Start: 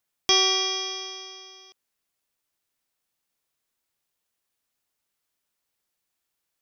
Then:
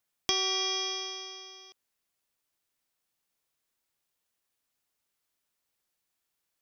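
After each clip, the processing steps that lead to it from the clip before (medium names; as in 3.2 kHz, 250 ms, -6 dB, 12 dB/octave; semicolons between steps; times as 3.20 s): compression, threshold -24 dBFS, peak gain reduction 8 dB; trim -1.5 dB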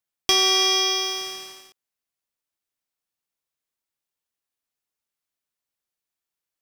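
waveshaping leveller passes 3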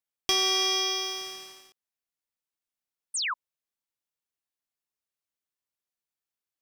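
painted sound fall, 3.14–3.34 s, 930–10000 Hz -23 dBFS; trim -6 dB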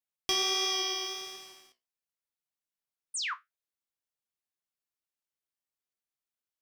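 flange 1.4 Hz, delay 8.6 ms, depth 8.3 ms, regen +61%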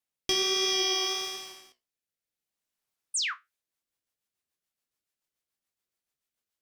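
rotary cabinet horn 0.6 Hz, later 7 Hz, at 3.09 s; trim +7.5 dB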